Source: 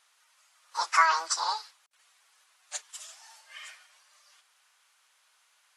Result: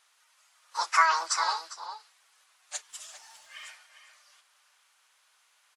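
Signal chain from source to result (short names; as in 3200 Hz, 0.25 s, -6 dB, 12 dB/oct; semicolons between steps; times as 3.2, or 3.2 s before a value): outdoor echo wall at 69 m, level -9 dB; 2.88–3.68 crackle 370/s -56 dBFS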